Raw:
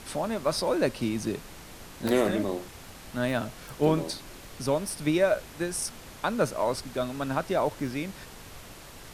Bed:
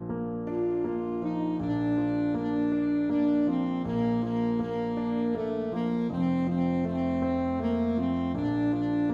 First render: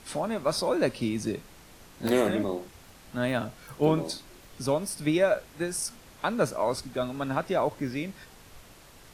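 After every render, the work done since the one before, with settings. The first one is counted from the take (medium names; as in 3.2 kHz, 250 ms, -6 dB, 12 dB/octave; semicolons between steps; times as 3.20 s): noise print and reduce 6 dB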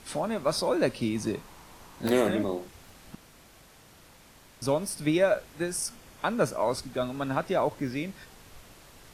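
1.15–2.02 s: peaking EQ 980 Hz +9 dB 0.61 oct; 3.15–4.62 s: room tone; 5.73–6.62 s: band-stop 4 kHz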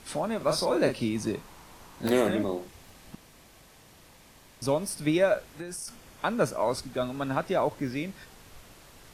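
0.37–1.04 s: doubling 39 ms -6.5 dB; 2.64–4.85 s: band-stop 1.4 kHz, Q 11; 5.46–5.88 s: compression, threshold -34 dBFS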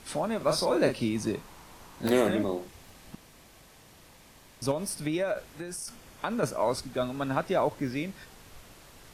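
4.71–6.43 s: compression, threshold -25 dBFS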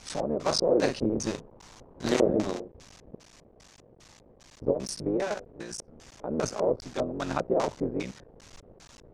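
cycle switcher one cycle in 3, muted; LFO low-pass square 2.5 Hz 500–6300 Hz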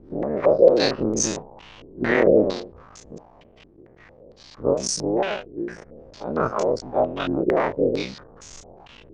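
every event in the spectrogram widened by 60 ms; step-sequenced low-pass 4.4 Hz 350–6800 Hz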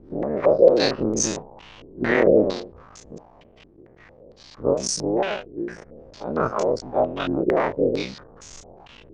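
no audible change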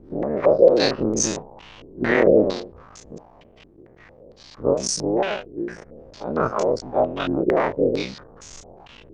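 trim +1 dB; peak limiter -3 dBFS, peak gain reduction 2 dB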